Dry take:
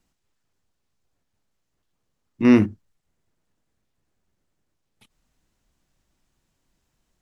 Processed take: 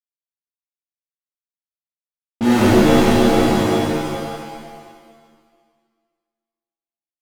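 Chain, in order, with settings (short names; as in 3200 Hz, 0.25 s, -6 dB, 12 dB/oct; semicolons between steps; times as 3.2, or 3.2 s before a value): wow and flutter 16 cents; reverse; compressor, threshold -26 dBFS, peak gain reduction 15 dB; reverse; fuzz box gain 48 dB, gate -47 dBFS; low-pass opened by the level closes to 320 Hz, open at -21 dBFS; crossover distortion -36 dBFS; on a send: bouncing-ball echo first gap 0.46 s, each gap 0.65×, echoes 5; on the sum: shimmer reverb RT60 1.7 s, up +7 st, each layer -2 dB, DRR -7.5 dB; gain -6.5 dB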